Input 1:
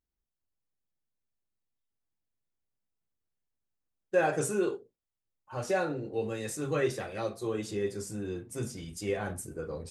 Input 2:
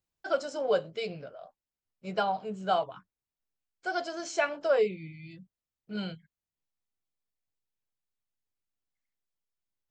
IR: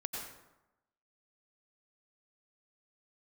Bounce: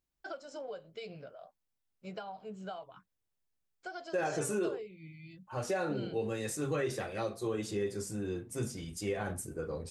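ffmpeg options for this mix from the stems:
-filter_complex "[0:a]volume=-0.5dB[a];[1:a]acompressor=threshold=-35dB:ratio=12,volume=-4.5dB[b];[a][b]amix=inputs=2:normalize=0,alimiter=level_in=0.5dB:limit=-24dB:level=0:latency=1:release=79,volume=-0.5dB"

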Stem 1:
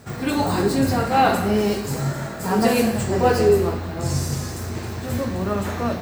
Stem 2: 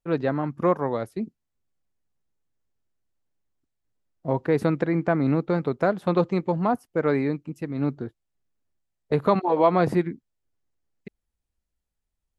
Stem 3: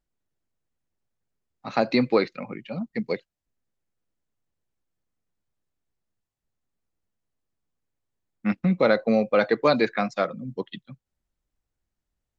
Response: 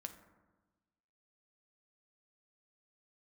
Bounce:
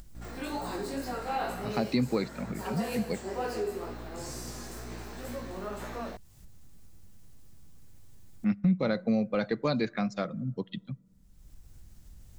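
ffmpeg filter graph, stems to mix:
-filter_complex "[0:a]highpass=280,aeval=exprs='val(0)+0.0178*(sin(2*PI*60*n/s)+sin(2*PI*2*60*n/s)/2+sin(2*PI*3*60*n/s)/3+sin(2*PI*4*60*n/s)/4+sin(2*PI*5*60*n/s)/5)':c=same,flanger=delay=16:depth=5.5:speed=2.1,adelay=150,volume=-5.5dB[a];[2:a]bass=f=250:g=14,treble=f=4k:g=8,acompressor=mode=upward:threshold=-28dB:ratio=2.5,volume=-3.5dB,asplit=2[b][c];[c]volume=-15.5dB[d];[3:a]atrim=start_sample=2205[e];[d][e]afir=irnorm=-1:irlink=0[f];[a][b][f]amix=inputs=3:normalize=0,acompressor=threshold=-40dB:ratio=1.5"

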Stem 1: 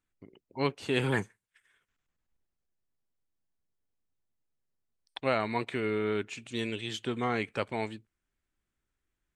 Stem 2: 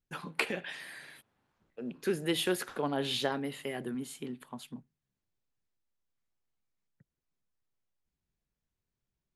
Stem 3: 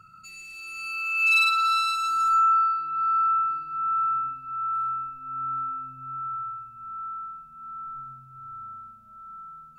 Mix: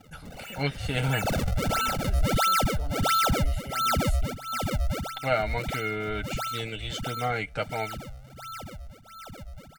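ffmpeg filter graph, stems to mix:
-filter_complex "[0:a]aecho=1:1:6.5:0.61,volume=0dB,asplit=2[a][b];[1:a]bass=f=250:g=4,treble=f=4k:g=6,alimiter=level_in=3.5dB:limit=-24dB:level=0:latency=1:release=90,volume=-3.5dB,volume=-5dB[c];[2:a]alimiter=limit=-20.5dB:level=0:latency=1:release=275,acrusher=samples=39:mix=1:aa=0.000001:lfo=1:lforange=62.4:lforate=1.5,volume=-1dB[d];[b]apad=whole_len=431430[e];[d][e]sidechaincompress=threshold=-33dB:ratio=8:attack=31:release=166[f];[a][c][f]amix=inputs=3:normalize=0,equalizer=f=1k:t=o:w=0.22:g=-6.5,aecho=1:1:1.4:0.64"

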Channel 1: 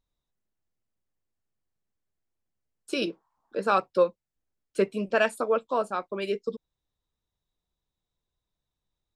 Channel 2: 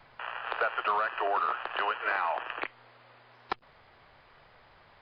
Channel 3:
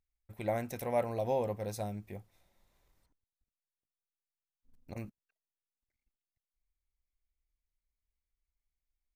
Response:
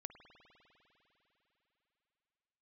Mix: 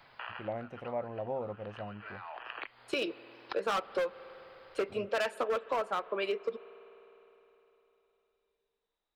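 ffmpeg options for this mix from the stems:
-filter_complex "[0:a]acrossover=split=350 3800:gain=0.126 1 0.178[a][b][c];[a][b][c]amix=inputs=3:normalize=0,asoftclip=type=hard:threshold=-24.5dB,volume=2dB,asplit=2[d][e];[e]volume=-6dB[f];[1:a]highshelf=f=3.7k:g=8,acompressor=threshold=-35dB:ratio=6,volume=-2.5dB[g];[2:a]lowpass=1.6k,volume=-3.5dB,asplit=2[h][i];[i]apad=whole_len=221089[j];[g][j]sidechaincompress=threshold=-49dB:ratio=5:attack=27:release=500[k];[3:a]atrim=start_sample=2205[l];[f][l]afir=irnorm=-1:irlink=0[m];[d][k][h][m]amix=inputs=4:normalize=0,lowshelf=f=72:g=-9.5,acompressor=threshold=-29dB:ratio=6"

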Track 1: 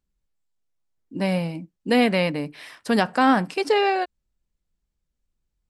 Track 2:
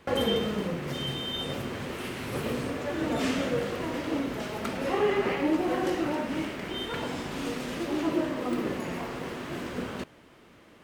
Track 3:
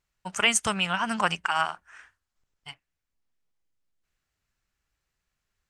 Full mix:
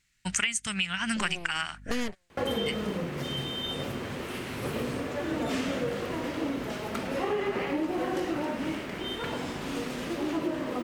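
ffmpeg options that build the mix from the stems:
-filter_complex "[0:a]aeval=exprs='0.501*(cos(1*acos(clip(val(0)/0.501,-1,1)))-cos(1*PI/2))+0.178*(cos(8*acos(clip(val(0)/0.501,-1,1)))-cos(8*PI/2))':c=same,aeval=exprs='val(0)+0.0178*(sin(2*PI*50*n/s)+sin(2*PI*2*50*n/s)/2+sin(2*PI*3*50*n/s)/3+sin(2*PI*4*50*n/s)/4+sin(2*PI*5*50*n/s)/5)':c=same,volume=-11dB[a];[1:a]adelay=2300,volume=-0.5dB[b];[2:a]equalizer=f=125:t=o:w=1:g=4,equalizer=f=250:t=o:w=1:g=6,equalizer=f=500:t=o:w=1:g=-8,equalizer=f=1k:t=o:w=1:g=-8,equalizer=f=2k:t=o:w=1:g=11,equalizer=f=4k:t=o:w=1:g=5,equalizer=f=8k:t=o:w=1:g=9,volume=3dB,asplit=2[c][d];[d]apad=whole_len=251085[e];[a][e]sidechaingate=range=-48dB:threshold=-46dB:ratio=16:detection=peak[f];[f][b][c]amix=inputs=3:normalize=0,acompressor=threshold=-25dB:ratio=16"

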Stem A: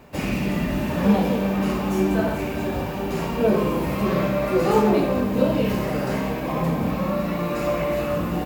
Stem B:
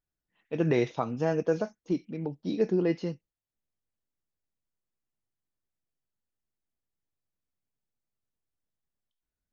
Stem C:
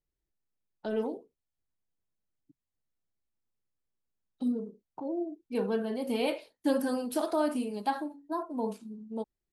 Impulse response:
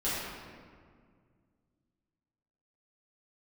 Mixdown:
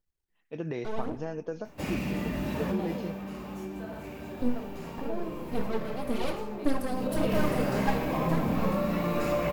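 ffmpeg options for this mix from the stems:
-filter_complex "[0:a]acompressor=threshold=-20dB:ratio=6,adelay=1650,volume=4.5dB,afade=t=out:st=2.62:d=0.59:silence=0.421697,afade=t=in:st=6.89:d=0.45:silence=0.281838[a];[1:a]acompressor=threshold=-24dB:ratio=6,volume=-6dB[b];[2:a]aeval=exprs='max(val(0),0)':c=same,aphaser=in_gain=1:out_gain=1:delay=3:decay=0.5:speed=1.8:type=triangular,volume=0dB,asplit=2[c][d];[d]volume=-21.5dB[e];[3:a]atrim=start_sample=2205[f];[e][f]afir=irnorm=-1:irlink=0[g];[a][b][c][g]amix=inputs=4:normalize=0"

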